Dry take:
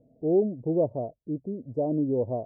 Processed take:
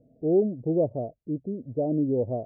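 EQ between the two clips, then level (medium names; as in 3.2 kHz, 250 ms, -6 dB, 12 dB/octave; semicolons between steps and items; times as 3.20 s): distance through air 470 m; peaking EQ 990 Hz -13 dB 0.27 oct; +2.0 dB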